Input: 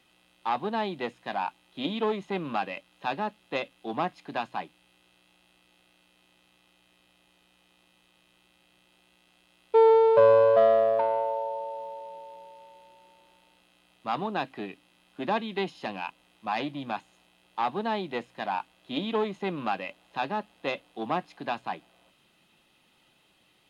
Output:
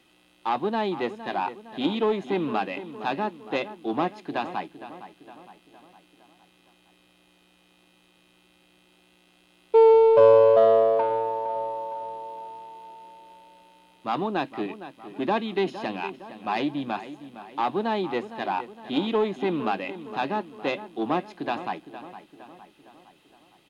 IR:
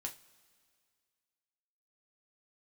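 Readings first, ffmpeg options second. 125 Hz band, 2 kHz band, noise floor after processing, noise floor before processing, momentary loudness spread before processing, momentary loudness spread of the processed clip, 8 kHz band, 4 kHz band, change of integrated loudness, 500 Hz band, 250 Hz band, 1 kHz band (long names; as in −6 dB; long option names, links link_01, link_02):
+3.0 dB, +1.5 dB, −61 dBFS, −66 dBFS, 19 LU, 21 LU, can't be measured, +2.0 dB, +3.0 dB, +3.5 dB, +6.0 dB, +2.5 dB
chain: -filter_complex "[0:a]equalizer=frequency=330:width=2.2:gain=7,asplit=2[link_01][link_02];[link_02]asoftclip=type=tanh:threshold=-23.5dB,volume=-9.5dB[link_03];[link_01][link_03]amix=inputs=2:normalize=0,asplit=2[link_04][link_05];[link_05]adelay=461,lowpass=frequency=4000:poles=1,volume=-13dB,asplit=2[link_06][link_07];[link_07]adelay=461,lowpass=frequency=4000:poles=1,volume=0.52,asplit=2[link_08][link_09];[link_09]adelay=461,lowpass=frequency=4000:poles=1,volume=0.52,asplit=2[link_10][link_11];[link_11]adelay=461,lowpass=frequency=4000:poles=1,volume=0.52,asplit=2[link_12][link_13];[link_13]adelay=461,lowpass=frequency=4000:poles=1,volume=0.52[link_14];[link_04][link_06][link_08][link_10][link_12][link_14]amix=inputs=6:normalize=0"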